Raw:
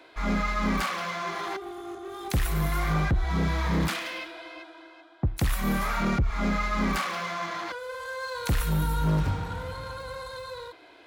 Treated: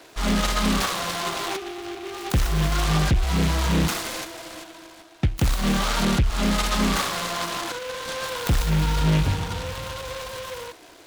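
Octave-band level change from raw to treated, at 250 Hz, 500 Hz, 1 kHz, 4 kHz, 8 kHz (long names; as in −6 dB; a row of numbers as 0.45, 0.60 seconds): +4.5, +4.5, +3.0, +10.0, +10.5 decibels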